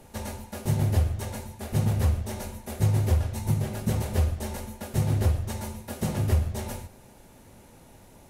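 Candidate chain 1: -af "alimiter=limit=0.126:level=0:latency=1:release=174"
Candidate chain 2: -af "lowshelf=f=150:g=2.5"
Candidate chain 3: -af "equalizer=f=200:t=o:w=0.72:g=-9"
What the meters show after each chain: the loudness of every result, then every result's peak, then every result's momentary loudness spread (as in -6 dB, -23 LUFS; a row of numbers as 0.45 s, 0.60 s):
-30.5 LUFS, -26.5 LUFS, -29.5 LUFS; -18.0 dBFS, -10.5 dBFS, -12.5 dBFS; 10 LU, 13 LU, 12 LU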